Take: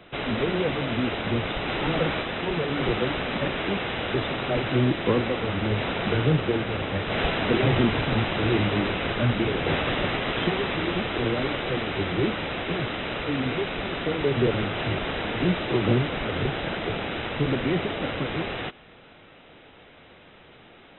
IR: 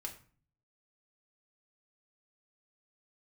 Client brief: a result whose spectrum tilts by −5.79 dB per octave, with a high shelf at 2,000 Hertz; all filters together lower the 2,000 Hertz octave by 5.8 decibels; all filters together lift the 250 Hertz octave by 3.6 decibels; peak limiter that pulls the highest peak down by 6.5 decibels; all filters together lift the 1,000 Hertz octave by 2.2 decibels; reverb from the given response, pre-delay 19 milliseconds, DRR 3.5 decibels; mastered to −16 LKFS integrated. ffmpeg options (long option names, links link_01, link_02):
-filter_complex "[0:a]equalizer=frequency=250:width_type=o:gain=4.5,equalizer=frequency=1000:width_type=o:gain=5.5,highshelf=frequency=2000:gain=-4,equalizer=frequency=2000:width_type=o:gain=-7,alimiter=limit=-14dB:level=0:latency=1,asplit=2[link_01][link_02];[1:a]atrim=start_sample=2205,adelay=19[link_03];[link_02][link_03]afir=irnorm=-1:irlink=0,volume=-1.5dB[link_04];[link_01][link_04]amix=inputs=2:normalize=0,volume=8dB"